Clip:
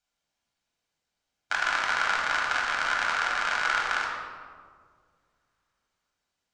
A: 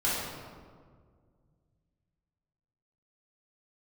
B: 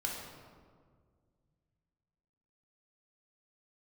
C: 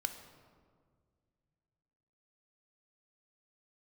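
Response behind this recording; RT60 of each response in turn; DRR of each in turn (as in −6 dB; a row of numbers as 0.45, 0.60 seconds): B; 1.8, 1.8, 1.9 seconds; −9.5, −2.5, 7.0 decibels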